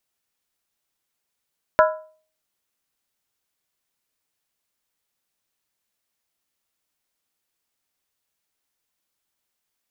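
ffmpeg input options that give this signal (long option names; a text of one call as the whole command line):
ffmpeg -f lavfi -i "aevalsrc='0.316*pow(10,-3*t/0.44)*sin(2*PI*626*t)+0.224*pow(10,-3*t/0.349)*sin(2*PI*997.8*t)+0.158*pow(10,-3*t/0.301)*sin(2*PI*1337.1*t)+0.112*pow(10,-3*t/0.29)*sin(2*PI*1437.3*t)+0.0794*pow(10,-3*t/0.27)*sin(2*PI*1660.8*t)':duration=0.63:sample_rate=44100" out.wav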